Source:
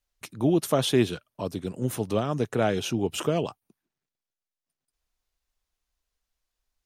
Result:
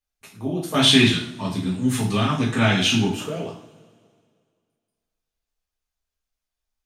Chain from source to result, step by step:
0:00.74–0:03.14: octave-band graphic EQ 125/250/500/1,000/2,000/4,000/8,000 Hz +10/+10/−6/+10/+10/+8/+10 dB
coupled-rooms reverb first 0.47 s, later 2.1 s, from −20 dB, DRR −5 dB
dynamic equaliser 3,100 Hz, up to +7 dB, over −29 dBFS, Q 0.99
level −9 dB

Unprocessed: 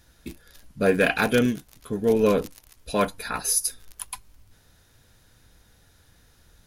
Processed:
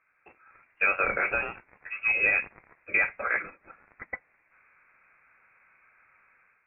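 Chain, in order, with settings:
low-pass that shuts in the quiet parts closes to 1,400 Hz, open at −21 dBFS
high-pass filter 600 Hz 24 dB per octave
automatic gain control gain up to 9 dB
brickwall limiter −13.5 dBFS, peak gain reduction 11 dB
voice inversion scrambler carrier 3,000 Hz
level −1 dB

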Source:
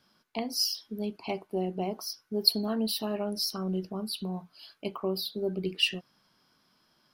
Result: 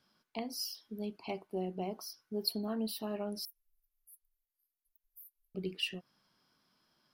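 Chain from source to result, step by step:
0:03.45–0:05.55: inverse Chebyshev band-stop filter 140–2,900 Hz, stop band 80 dB
dynamic equaliser 4,400 Hz, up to −6 dB, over −40 dBFS, Q 0.81
level −6 dB

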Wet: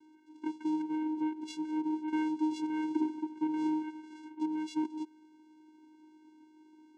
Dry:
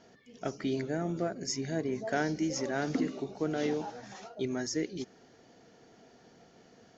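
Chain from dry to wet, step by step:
mains hum 50 Hz, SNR 24 dB
channel vocoder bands 4, square 310 Hz

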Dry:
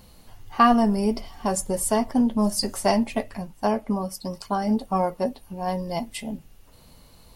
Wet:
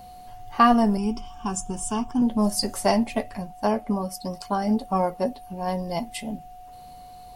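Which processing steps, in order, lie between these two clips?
0:00.97–0:02.22: phaser with its sweep stopped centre 2,900 Hz, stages 8
steady tone 730 Hz −42 dBFS

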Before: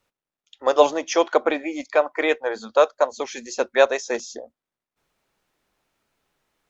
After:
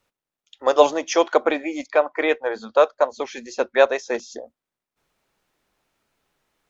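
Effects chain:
0:01.87–0:04.32: high-frequency loss of the air 100 metres
level +1 dB

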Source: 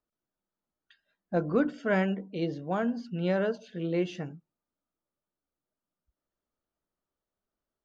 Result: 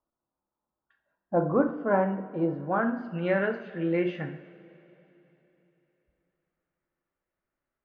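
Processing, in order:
low-pass filter sweep 1,000 Hz → 2,000 Hz, 0:02.42–0:03.15
coupled-rooms reverb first 0.56 s, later 3.6 s, from −18 dB, DRR 4.5 dB

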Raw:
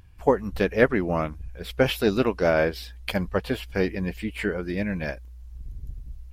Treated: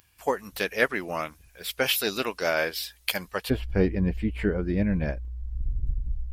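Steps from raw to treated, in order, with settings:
spectral tilt +4 dB per octave, from 0:03.49 −2.5 dB per octave
level −2.5 dB

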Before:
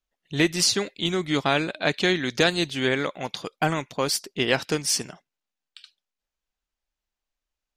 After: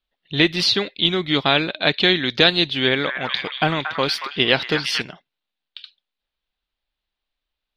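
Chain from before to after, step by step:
high shelf with overshoot 5,300 Hz −12.5 dB, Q 3
0:02.83–0:05.02: echo through a band-pass that steps 230 ms, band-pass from 1,400 Hz, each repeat 0.7 octaves, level −2.5 dB
level +3 dB

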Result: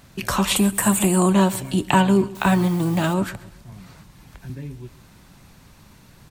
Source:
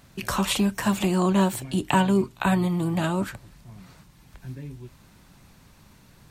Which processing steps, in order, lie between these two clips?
0:00.56–0:01.33: high shelf with overshoot 6,900 Hz +8.5 dB, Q 3
on a send: repeating echo 132 ms, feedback 41%, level −19.5 dB
0:02.35–0:03.14: on the sum: bit-depth reduction 8 bits, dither triangular
0:03.72–0:04.50: multiband upward and downward compressor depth 40%
level +4 dB

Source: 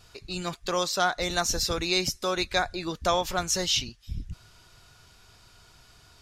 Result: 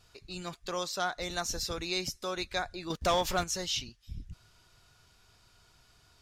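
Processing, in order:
0:02.90–0:03.44: leveller curve on the samples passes 2
level −7.5 dB

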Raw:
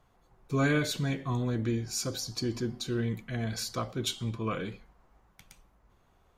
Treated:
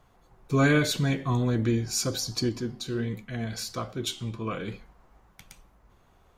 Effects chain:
0:02.49–0:04.68: flanger 1.4 Hz, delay 9.2 ms, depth 6.7 ms, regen +79%
level +5 dB

